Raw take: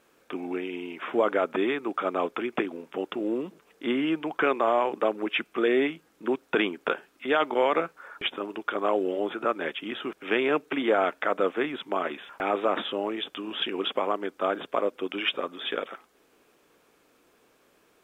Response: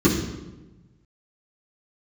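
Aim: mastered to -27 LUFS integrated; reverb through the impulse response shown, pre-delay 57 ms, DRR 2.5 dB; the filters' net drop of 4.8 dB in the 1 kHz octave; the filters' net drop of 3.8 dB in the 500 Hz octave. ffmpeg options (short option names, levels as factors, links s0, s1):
-filter_complex "[0:a]equalizer=f=500:t=o:g=-3.5,equalizer=f=1000:t=o:g=-5.5,asplit=2[s0][s1];[1:a]atrim=start_sample=2205,adelay=57[s2];[s1][s2]afir=irnorm=-1:irlink=0,volume=0.0944[s3];[s0][s3]amix=inputs=2:normalize=0,volume=0.562"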